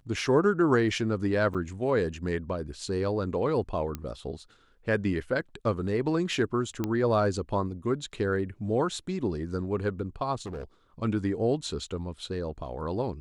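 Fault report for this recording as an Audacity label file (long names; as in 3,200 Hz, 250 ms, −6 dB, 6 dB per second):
1.540000	1.550000	drop-out 6.7 ms
3.950000	3.950000	click −19 dBFS
6.840000	6.840000	click −16 dBFS
10.360000	10.640000	clipping −33 dBFS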